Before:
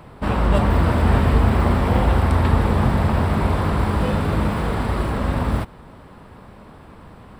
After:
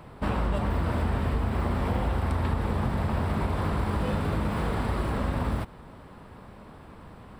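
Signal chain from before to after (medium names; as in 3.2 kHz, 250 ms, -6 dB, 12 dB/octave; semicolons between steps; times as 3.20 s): compression, threshold -19 dBFS, peak gain reduction 8.5 dB; trim -4 dB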